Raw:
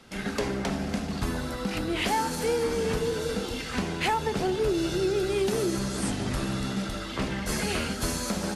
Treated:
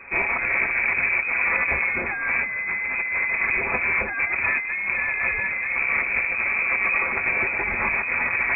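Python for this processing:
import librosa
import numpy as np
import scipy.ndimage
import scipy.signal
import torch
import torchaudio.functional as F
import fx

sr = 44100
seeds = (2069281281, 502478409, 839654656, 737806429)

y = fx.lower_of_two(x, sr, delay_ms=6.6)
y = fx.low_shelf(y, sr, hz=140.0, db=5.0)
y = fx.over_compress(y, sr, threshold_db=-33.0, ratio=-1.0)
y = fx.freq_invert(y, sr, carrier_hz=2500)
y = y * 10.0 ** (9.0 / 20.0)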